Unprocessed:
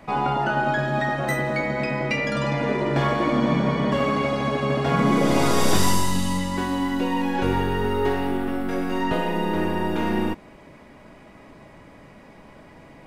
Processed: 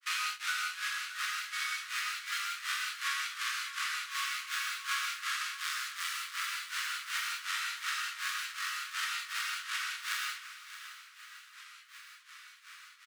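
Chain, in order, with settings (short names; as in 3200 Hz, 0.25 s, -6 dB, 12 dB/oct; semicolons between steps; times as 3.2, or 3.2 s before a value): half-waves squared off; steep high-pass 1200 Hz 72 dB/oct; high shelf 11000 Hz -7 dB; compressor 5:1, threshold -32 dBFS, peak gain reduction 11 dB; grains 0.22 s, grains 2.7/s, spray 34 ms, pitch spread up and down by 0 st; feedback echo 0.621 s, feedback 34%, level -13 dB; non-linear reverb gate 0.22 s flat, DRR -3 dB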